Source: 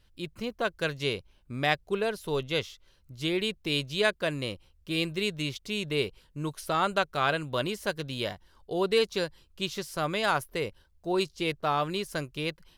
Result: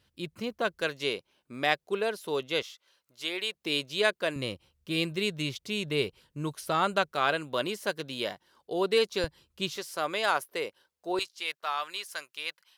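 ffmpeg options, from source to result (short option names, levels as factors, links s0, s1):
-af "asetnsamples=n=441:p=0,asendcmd='0.81 highpass f 260;2.62 highpass f 610;3.55 highpass f 260;4.36 highpass f 93;7.12 highpass f 220;9.24 highpass f 92;9.76 highpass f 370;11.19 highpass f 1100',highpass=100"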